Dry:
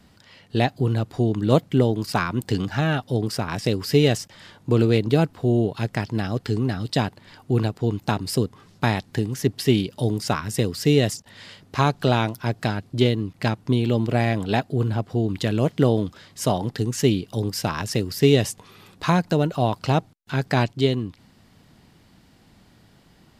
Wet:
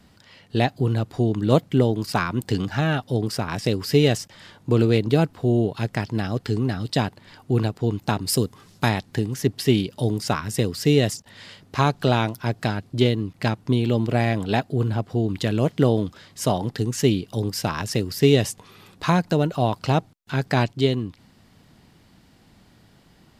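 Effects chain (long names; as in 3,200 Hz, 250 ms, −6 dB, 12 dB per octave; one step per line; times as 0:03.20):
0:08.28–0:08.89: high-shelf EQ 5,000 Hz +9 dB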